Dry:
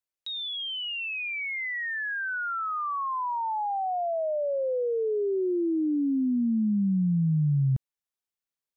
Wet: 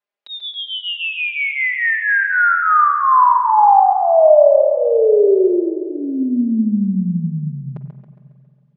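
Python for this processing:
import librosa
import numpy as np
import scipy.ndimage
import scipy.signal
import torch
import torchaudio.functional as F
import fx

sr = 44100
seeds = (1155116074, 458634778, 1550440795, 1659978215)

y = fx.dynamic_eq(x, sr, hz=1200.0, q=0.8, threshold_db=-44.0, ratio=4.0, max_db=6)
y = fx.bandpass_edges(y, sr, low_hz=260.0, high_hz=2800.0)
y = fx.peak_eq(y, sr, hz=630.0, db=4.5, octaves=1.1)
y = y + 0.99 * np.pad(y, (int(4.9 * sr / 1000.0), 0))[:len(y)]
y = fx.echo_feedback(y, sr, ms=137, feedback_pct=54, wet_db=-8.5)
y = fx.rev_spring(y, sr, rt60_s=2.5, pass_ms=(45, 53), chirp_ms=65, drr_db=9.5)
y = F.gain(torch.from_numpy(y), 6.0).numpy()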